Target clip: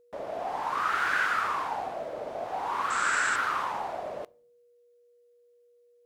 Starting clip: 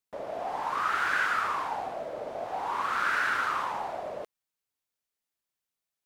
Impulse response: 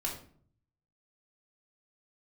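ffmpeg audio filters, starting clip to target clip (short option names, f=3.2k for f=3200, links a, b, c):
-filter_complex "[0:a]asettb=1/sr,asplit=3[a][b][c];[a]atrim=end=2.904[d];[b]atrim=start=2.9:end=3.36,asetpts=PTS-STARTPTS,afade=t=in:d=0.004:c=qsin,afade=t=out:st=0.456:d=0.004:c=qsin,lowpass=f=7.7k:t=q:w=13[e];[c]atrim=start=3.356[f];[d][e]acrossfade=d=0.004:c1=hsin:c2=qsin[g];[g][f]acrossfade=d=0.004:c1=qsin:c2=hsin,aeval=exprs='val(0)+0.001*sin(2*PI*480*n/s)':c=same,asplit=2[h][i];[1:a]atrim=start_sample=2205[j];[i][j]afir=irnorm=-1:irlink=0,volume=-23dB[k];[h][k]amix=inputs=2:normalize=0"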